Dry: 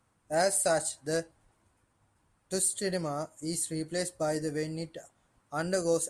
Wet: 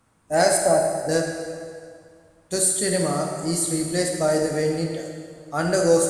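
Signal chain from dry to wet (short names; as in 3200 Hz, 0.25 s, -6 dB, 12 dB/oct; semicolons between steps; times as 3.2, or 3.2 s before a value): 0.57–1.09 LPF 1100 Hz 24 dB/oct; plate-style reverb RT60 2.1 s, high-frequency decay 0.85×, DRR 1 dB; gain +7 dB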